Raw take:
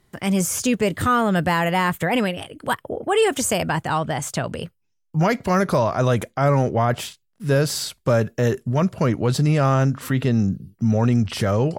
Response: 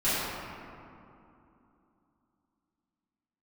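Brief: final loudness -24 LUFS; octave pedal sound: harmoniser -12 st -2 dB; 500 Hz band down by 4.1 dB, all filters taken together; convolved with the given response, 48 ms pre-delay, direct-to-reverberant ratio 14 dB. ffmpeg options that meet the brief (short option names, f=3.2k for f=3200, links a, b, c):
-filter_complex "[0:a]equalizer=f=500:t=o:g=-5,asplit=2[a][b];[1:a]atrim=start_sample=2205,adelay=48[c];[b][c]afir=irnorm=-1:irlink=0,volume=-27.5dB[d];[a][d]amix=inputs=2:normalize=0,asplit=2[e][f];[f]asetrate=22050,aresample=44100,atempo=2,volume=-2dB[g];[e][g]amix=inputs=2:normalize=0,volume=-3.5dB"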